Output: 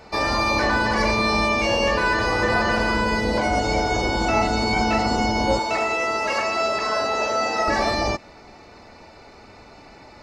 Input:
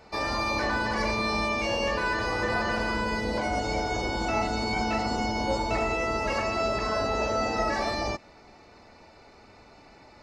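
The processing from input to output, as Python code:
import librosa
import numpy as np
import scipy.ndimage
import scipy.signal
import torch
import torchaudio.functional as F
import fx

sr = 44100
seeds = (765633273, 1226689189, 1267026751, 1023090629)

y = fx.highpass(x, sr, hz=610.0, slope=6, at=(5.59, 7.68))
y = F.gain(torch.from_numpy(y), 7.0).numpy()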